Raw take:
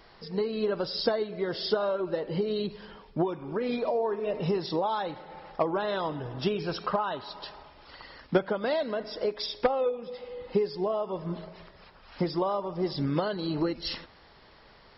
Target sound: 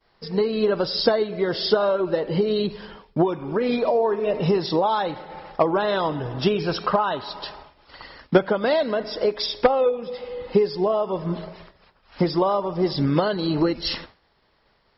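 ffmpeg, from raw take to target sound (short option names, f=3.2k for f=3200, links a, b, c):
-af "agate=range=-33dB:threshold=-44dB:ratio=3:detection=peak,volume=7.5dB"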